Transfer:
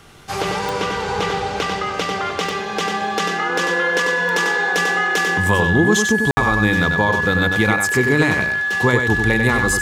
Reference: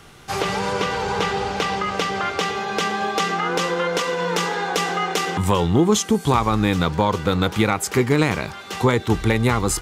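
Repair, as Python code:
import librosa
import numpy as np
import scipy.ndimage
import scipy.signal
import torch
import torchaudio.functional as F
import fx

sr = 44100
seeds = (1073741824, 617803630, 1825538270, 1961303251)

y = fx.fix_declick_ar(x, sr, threshold=10.0)
y = fx.notch(y, sr, hz=1700.0, q=30.0)
y = fx.fix_ambience(y, sr, seeds[0], print_start_s=0.0, print_end_s=0.5, start_s=6.31, end_s=6.37)
y = fx.fix_echo_inverse(y, sr, delay_ms=95, level_db=-5.5)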